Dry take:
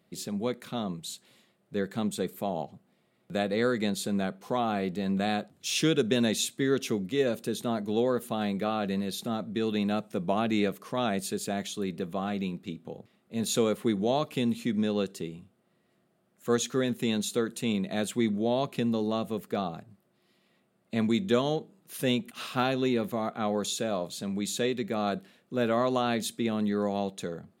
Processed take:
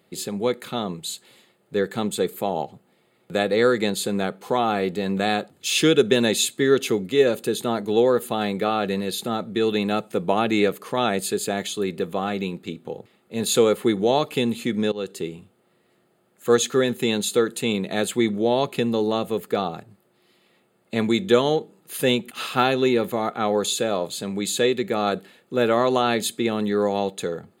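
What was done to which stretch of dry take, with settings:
0:14.92–0:15.34: fade in equal-power, from −18.5 dB
whole clip: low-shelf EQ 120 Hz −8 dB; notch filter 5,600 Hz, Q 5.6; comb filter 2.3 ms, depth 31%; level +8 dB

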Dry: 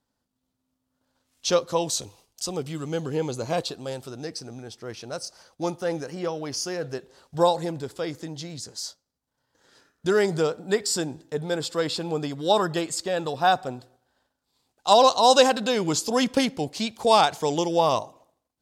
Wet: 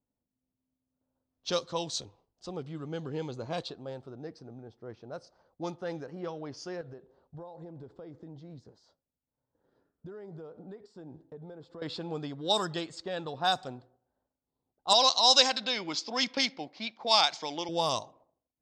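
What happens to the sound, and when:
0:06.81–0:11.82: downward compressor 10 to 1, threshold −34 dBFS
0:14.93–0:17.69: loudspeaker in its box 290–6,100 Hz, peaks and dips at 430 Hz −9 dB, 2,200 Hz +9 dB, 5,200 Hz +5 dB
whole clip: dynamic equaliser 500 Hz, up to −3 dB, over −29 dBFS, Q 0.97; low-pass that shuts in the quiet parts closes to 660 Hz, open at −17.5 dBFS; flat-topped bell 5,600 Hz +8.5 dB; level −7 dB

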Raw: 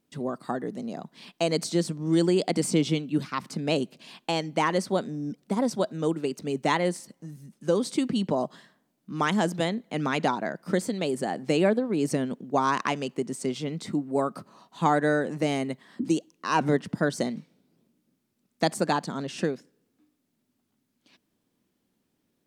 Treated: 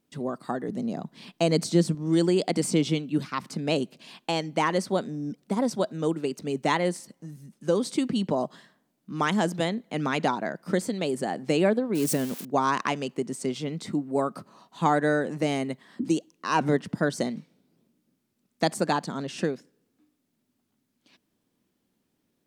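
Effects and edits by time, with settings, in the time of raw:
0:00.69–0:01.95: low-shelf EQ 290 Hz +8 dB
0:11.95–0:12.45: spike at every zero crossing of −24 dBFS

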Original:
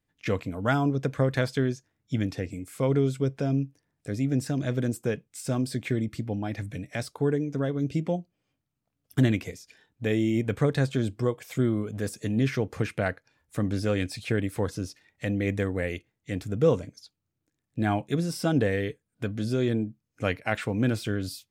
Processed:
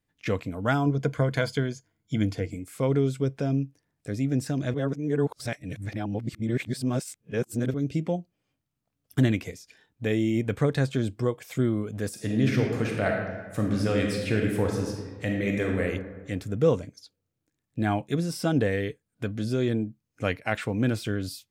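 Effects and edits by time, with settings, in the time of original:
0:00.85–0:02.56: EQ curve with evenly spaced ripples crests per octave 1.8, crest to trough 9 dB
0:04.74–0:07.74: reverse
0:12.09–0:15.81: thrown reverb, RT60 1.4 s, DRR 0.5 dB

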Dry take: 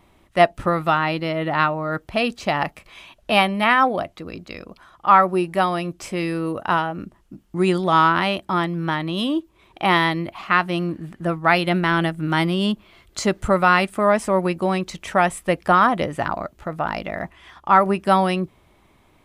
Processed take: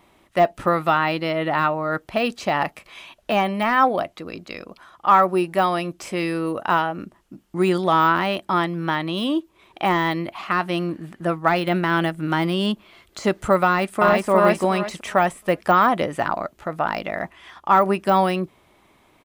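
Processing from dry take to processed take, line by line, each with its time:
0:13.65–0:14.28: delay throw 360 ms, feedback 25%, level −1.5 dB
whole clip: de-essing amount 75%; low-shelf EQ 130 Hz −12 dB; level +2 dB

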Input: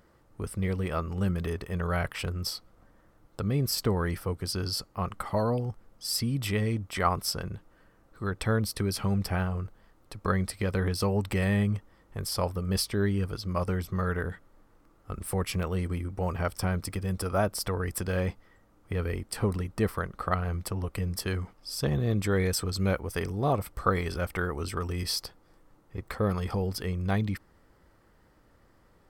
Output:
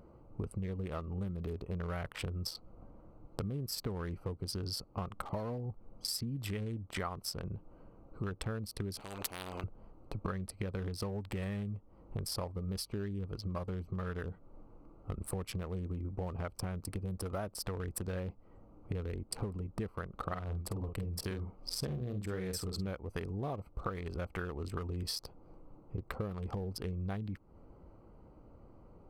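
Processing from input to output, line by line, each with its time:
0:09.00–0:09.64: every bin compressed towards the loudest bin 10 to 1
0:20.25–0:22.87: double-tracking delay 48 ms −6 dB
whole clip: adaptive Wiener filter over 25 samples; downward compressor 10 to 1, threshold −41 dBFS; level +6 dB

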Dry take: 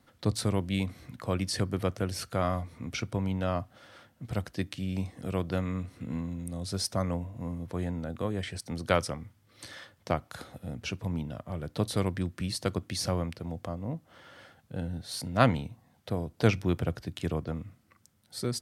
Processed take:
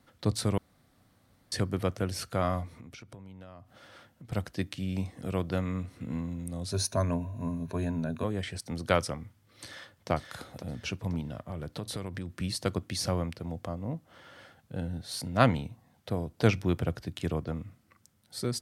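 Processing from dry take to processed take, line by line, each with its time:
0:00.58–0:01.52: fill with room tone
0:02.80–0:04.32: downward compressor 10 to 1, threshold −44 dBFS
0:06.71–0:08.24: EQ curve with evenly spaced ripples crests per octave 1.5, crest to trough 12 dB
0:09.64–0:10.10: delay throw 520 ms, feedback 35%, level −4.5 dB
0:11.20–0:12.30: downward compressor, threshold −32 dBFS

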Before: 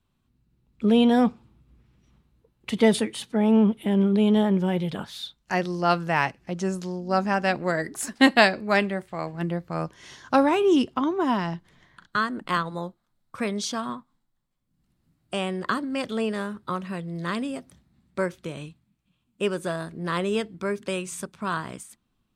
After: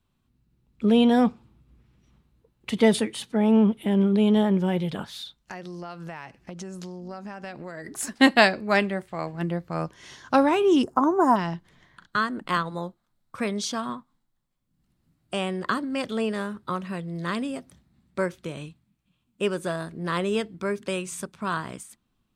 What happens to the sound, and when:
0:05.12–0:07.87: downward compressor 10 to 1, threshold −33 dBFS
0:10.83–0:11.36: drawn EQ curve 210 Hz 0 dB, 810 Hz +8 dB, 1,500 Hz +3 dB, 3,100 Hz −22 dB, 7,000 Hz +9 dB

